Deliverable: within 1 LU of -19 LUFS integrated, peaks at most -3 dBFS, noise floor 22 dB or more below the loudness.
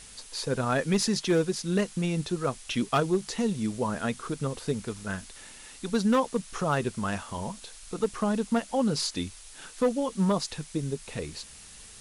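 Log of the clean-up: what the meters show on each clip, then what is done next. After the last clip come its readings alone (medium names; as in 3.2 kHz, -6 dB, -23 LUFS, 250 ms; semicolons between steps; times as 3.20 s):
clipped samples 0.4%; clipping level -17.5 dBFS; noise floor -48 dBFS; noise floor target -51 dBFS; loudness -29.0 LUFS; peak level -17.5 dBFS; loudness target -19.0 LUFS
-> clip repair -17.5 dBFS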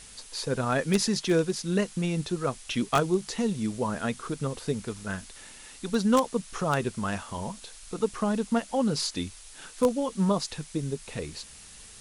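clipped samples 0.0%; noise floor -48 dBFS; noise floor target -51 dBFS
-> noise reduction 6 dB, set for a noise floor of -48 dBFS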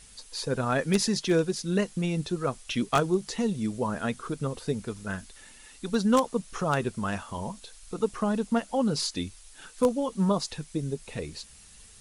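noise floor -52 dBFS; loudness -29.0 LUFS; peak level -8.5 dBFS; loudness target -19.0 LUFS
-> trim +10 dB; peak limiter -3 dBFS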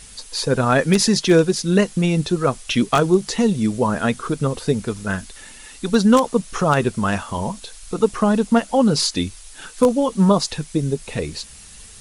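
loudness -19.5 LUFS; peak level -3.0 dBFS; noise floor -42 dBFS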